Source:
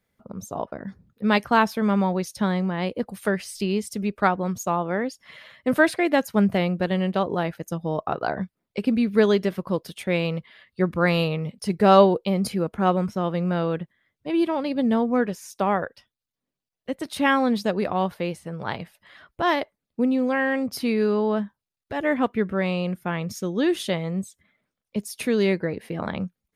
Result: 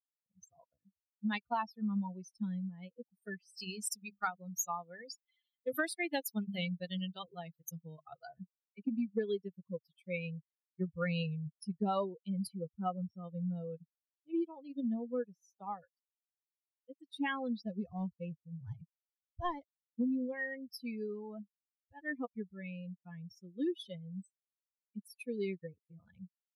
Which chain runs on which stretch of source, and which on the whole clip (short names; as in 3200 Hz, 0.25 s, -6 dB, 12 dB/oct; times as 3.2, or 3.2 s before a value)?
3.57–8.26 high shelf 3100 Hz +12 dB + notches 50/100/150/200/250 Hz
17.66–20.32 CVSD 32 kbps + low shelf 190 Hz +8.5 dB
whole clip: per-bin expansion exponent 3; compressor 6:1, threshold -26 dBFS; gain -4.5 dB